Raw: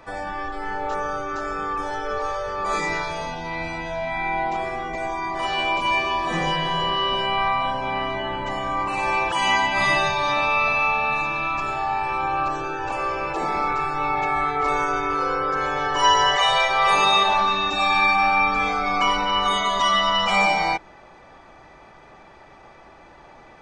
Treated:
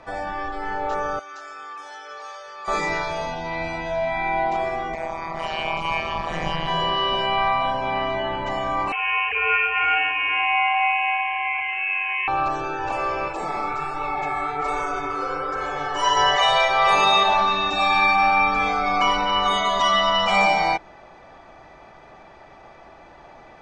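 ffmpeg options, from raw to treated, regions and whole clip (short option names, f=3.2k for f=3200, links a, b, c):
-filter_complex "[0:a]asettb=1/sr,asplit=3[a][b][c];[a]atrim=end=1.194[d];[b]atrim=start=1.19:end=2.68,asetpts=PTS-STARTPTS,afade=t=in:d=0.004:c=qsin,afade=t=out:st=1.486:d=0.004:c=qsin,lowpass=f=3k:p=1,aderivative,acontrast=63[e];[c]atrim=start=2.676[f];[d][e]acrossfade=d=0.004:c1=hsin:c2=qsin[g];[g][f]acrossfade=d=0.004:c1=qsin:c2=hsin,asettb=1/sr,asplit=3[h][i][j];[h]atrim=end=4.944[k];[i]atrim=start=4.94:end=6.68,asetpts=PTS-STARTPTS,afade=t=in:d=0.004:c=qsin,afade=t=out:st=1.736:d=0.004:c=qsin,asubboost=boost=7:cutoff=100,tremolo=f=160:d=0.974[l];[j]atrim=start=6.676[m];[k][l]acrossfade=d=0.004:c1=hsin:c2=qsin[n];[n][m]acrossfade=d=0.004:c1=qsin:c2=hsin,asettb=1/sr,asplit=3[o][p][q];[o]atrim=end=8.924[r];[p]atrim=start=8.92:end=12.28,asetpts=PTS-STARTPTS,afade=t=in:d=0.004:c=qsin,afade=t=out:st=3.356:d=0.004:c=qsin,highpass=510,lowpass=f=2.9k:t=q:w=0.5098,lowpass=f=2.9k:t=q:w=0.6013,lowpass=f=2.9k:t=q:w=0.9,lowpass=f=2.9k:t=q:w=2.563,afreqshift=-3400[s];[q]atrim=start=12.276[t];[r][s]acrossfade=d=0.004:c1=hsin:c2=qsin[u];[u][t]acrossfade=d=0.004:c1=qsin:c2=hsin,asettb=1/sr,asplit=3[v][w][x];[v]atrim=end=13.284[y];[w]atrim=start=13.28:end=16.17,asetpts=PTS-STARTPTS,afade=t=in:d=0.004:c=qsin,afade=t=out:st=2.886:d=0.004:c=qsin,equalizer=f=8.2k:w=3.1:g=11,flanger=delay=1.5:depth=9.1:regen=43:speed=1.3:shape=triangular[z];[x]atrim=start=16.166[aa];[y][z]acrossfade=d=0.004:c1=hsin:c2=qsin[ab];[ab][aa]acrossfade=d=0.004:c1=qsin:c2=hsin,lowpass=7.6k,equalizer=f=680:t=o:w=0.33:g=5"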